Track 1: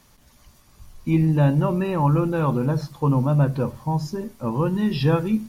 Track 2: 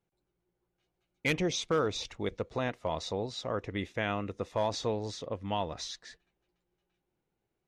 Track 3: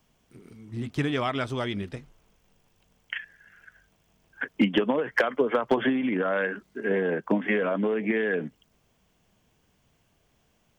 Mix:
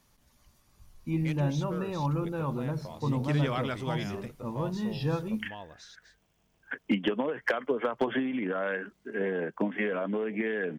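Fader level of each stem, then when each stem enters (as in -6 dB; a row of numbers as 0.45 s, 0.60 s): -10.5 dB, -11.5 dB, -5.0 dB; 0.00 s, 0.00 s, 2.30 s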